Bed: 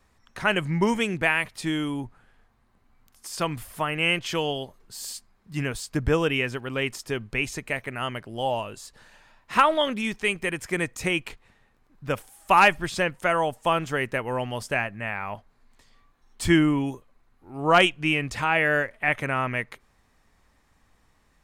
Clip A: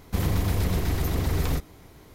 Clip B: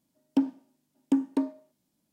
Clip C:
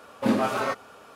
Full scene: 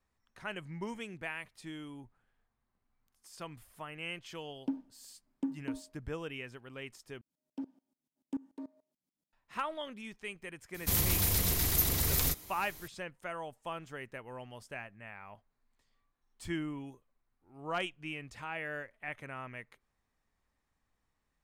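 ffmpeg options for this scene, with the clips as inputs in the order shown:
-filter_complex "[2:a]asplit=2[a][b];[0:a]volume=-17.5dB[c];[a]bass=f=250:g=5,treble=f=4k:g=-5[d];[b]aeval=exprs='val(0)*pow(10,-21*if(lt(mod(-6.9*n/s,1),2*abs(-6.9)/1000),1-mod(-6.9*n/s,1)/(2*abs(-6.9)/1000),(mod(-6.9*n/s,1)-2*abs(-6.9)/1000)/(1-2*abs(-6.9)/1000))/20)':c=same[e];[1:a]crystalizer=i=6.5:c=0[f];[c]asplit=2[g][h];[g]atrim=end=7.214[i];[e]atrim=end=2.12,asetpts=PTS-STARTPTS,volume=-10dB[j];[h]atrim=start=9.326[k];[d]atrim=end=2.12,asetpts=PTS-STARTPTS,volume=-13dB,afade=t=in:d=0.004:c=hsin,afade=t=out:st=2.116:d=0.004:c=hsin,adelay=4310[l];[f]atrim=end=2.14,asetpts=PTS-STARTPTS,volume=-9dB,afade=t=in:d=0.004:c=hsin,afade=t=out:st=2.136:d=0.004:c=hsin,adelay=473634S[m];[i][j]acrossfade=d=0.004:c1=hsin:c2=hsin[n];[n][k]acrossfade=d=0.004:c1=hsin:c2=hsin[o];[o][l][m]amix=inputs=3:normalize=0"

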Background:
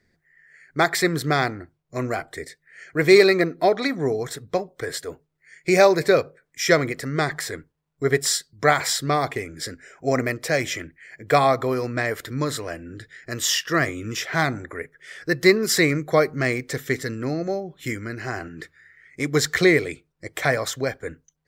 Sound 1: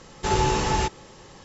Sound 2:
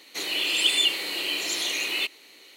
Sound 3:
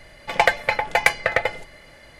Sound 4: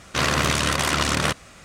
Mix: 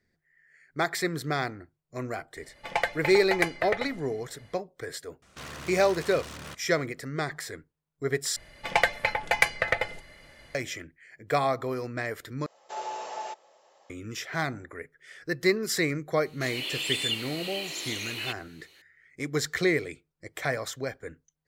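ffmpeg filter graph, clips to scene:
-filter_complex "[3:a]asplit=2[a][b];[0:a]volume=-8dB[c];[4:a]asoftclip=type=tanh:threshold=-25dB[d];[b]equalizer=f=640:w=0.64:g=-3[e];[1:a]highpass=f=640:t=q:w=5.7[f];[c]asplit=3[g][h][i];[g]atrim=end=8.364[j];[e]atrim=end=2.19,asetpts=PTS-STARTPTS,volume=-4dB[k];[h]atrim=start=10.546:end=12.464[l];[f]atrim=end=1.44,asetpts=PTS-STARTPTS,volume=-16.5dB[m];[i]atrim=start=13.896[n];[a]atrim=end=2.19,asetpts=PTS-STARTPTS,volume=-10dB,afade=t=in:d=0.004:c=hsin,afade=t=out:st=2.186:d=0.004:c=hsin,adelay=2360[o];[d]atrim=end=1.64,asetpts=PTS-STARTPTS,volume=-13.5dB,afade=t=in:d=0.004:c=hsin,afade=t=out:st=1.636:d=0.004:c=hsin,adelay=5220[p];[2:a]atrim=end=2.56,asetpts=PTS-STARTPTS,volume=-7.5dB,afade=t=in:d=0.004:c=hsin,afade=t=out:st=2.556:d=0.004:c=hsin,adelay=16260[q];[j][k]acrossfade=d=0.004:c1=hsin:c2=hsin[r];[r][l]acrossfade=d=0.004:c1=hsin:c2=hsin[s];[s][m]acrossfade=d=0.004:c1=hsin:c2=hsin[t];[t][n]acrossfade=d=0.004:c1=hsin:c2=hsin[u];[u][o][p][q]amix=inputs=4:normalize=0"

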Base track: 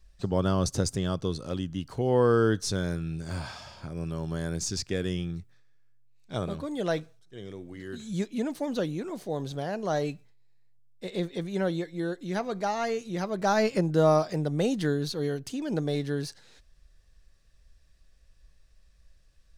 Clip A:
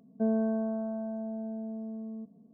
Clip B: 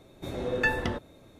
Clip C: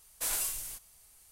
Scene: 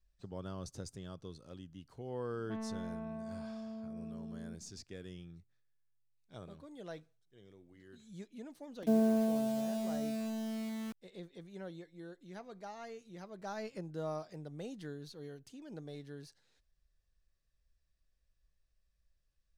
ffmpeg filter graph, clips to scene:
-filter_complex "[1:a]asplit=2[a][b];[0:a]volume=-18dB[c];[a]asoftclip=type=tanh:threshold=-32.5dB[d];[b]acrusher=bits=7:mix=0:aa=0.000001[e];[d]atrim=end=2.53,asetpts=PTS-STARTPTS,volume=-6dB,afade=t=in:d=0.004:c=hsin,afade=t=out:st=2.526:d=0.004:c=hsin,adelay=2300[f];[e]atrim=end=2.53,asetpts=PTS-STARTPTS,volume=-0.5dB,afade=t=in:d=0.004:c=hsin,afade=t=out:st=2.526:d=0.004:c=hsin,adelay=8670[g];[c][f][g]amix=inputs=3:normalize=0"

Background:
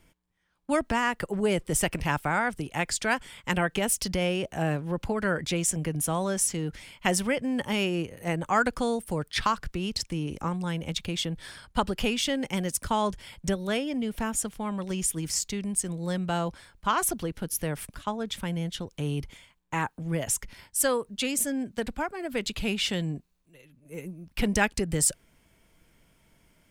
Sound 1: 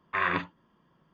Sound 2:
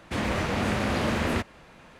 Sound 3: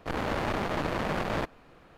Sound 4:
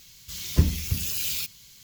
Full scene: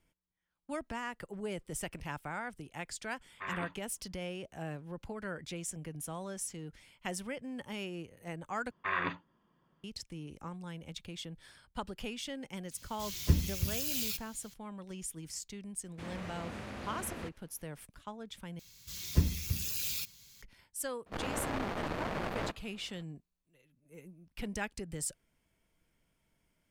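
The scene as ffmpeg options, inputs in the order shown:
-filter_complex "[1:a]asplit=2[a][b];[4:a]asplit=2[c][d];[0:a]volume=-13.5dB[e];[2:a]agate=range=-33dB:threshold=-48dB:ratio=3:release=100:detection=peak[f];[d]bandreject=f=3k:w=16[g];[e]asplit=3[h][i][j];[h]atrim=end=8.714[k];[b]atrim=end=1.13,asetpts=PTS-STARTPTS,volume=-6dB[l];[i]atrim=start=9.836:end=18.594[m];[g]atrim=end=1.83,asetpts=PTS-STARTPTS,volume=-7dB[n];[j]atrim=start=20.416[o];[a]atrim=end=1.13,asetpts=PTS-STARTPTS,volume=-13dB,afade=t=in:d=0.004:c=hsin,afade=t=out:st=1.126:d=0.004:c=hsin,adelay=3270[p];[c]atrim=end=1.83,asetpts=PTS-STARTPTS,volume=-6.5dB,afade=t=in:d=0.004:c=hsin,afade=t=out:st=1.826:d=0.004:c=hsin,adelay=12710[q];[f]atrim=end=1.99,asetpts=PTS-STARTPTS,volume=-17dB,afade=t=in:d=0.004:c=hsin,afade=t=out:st=1.986:d=0.004:c=hsin,adelay=15870[r];[3:a]atrim=end=1.97,asetpts=PTS-STARTPTS,volume=-6.5dB,afade=t=in:d=0.004:c=hsin,afade=t=out:st=1.966:d=0.004:c=hsin,adelay=21060[s];[k][l]acrossfade=d=0.004:c1=hsin:c2=hsin[t];[t][m]acrossfade=d=0.004:c1=hsin:c2=hsin[u];[u][n]acrossfade=d=0.004:c1=hsin:c2=hsin[v];[v][o]acrossfade=d=0.004:c1=hsin:c2=hsin[w];[w][p][q][r][s]amix=inputs=5:normalize=0"

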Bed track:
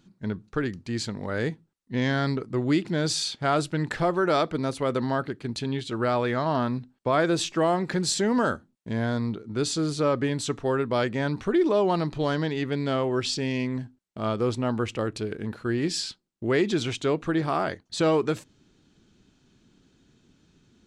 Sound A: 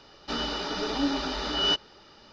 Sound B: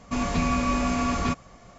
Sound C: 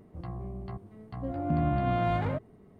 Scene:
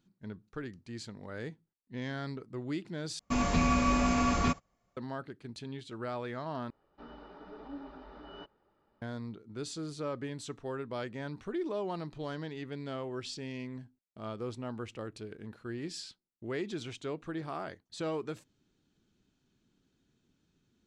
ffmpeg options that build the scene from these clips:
-filter_complex "[0:a]volume=-13dB[a];[2:a]agate=range=-24dB:threshold=-44dB:ratio=16:release=100:detection=peak[b];[1:a]lowpass=1.3k[c];[a]asplit=3[d][e][f];[d]atrim=end=3.194[g];[b]atrim=end=1.78,asetpts=PTS-STARTPTS,volume=-2.5dB[h];[e]atrim=start=4.966:end=6.704[i];[c]atrim=end=2.32,asetpts=PTS-STARTPTS,volume=-16.5dB[j];[f]atrim=start=9.016[k];[g][h]acrossfade=d=0.004:c1=hsin:c2=hsin[l];[l][i]acrossfade=d=0.004:c1=hsin:c2=hsin[m];[m][j]acrossfade=d=0.004:c1=hsin:c2=hsin[n];[n][k]acrossfade=d=0.004:c1=hsin:c2=hsin"

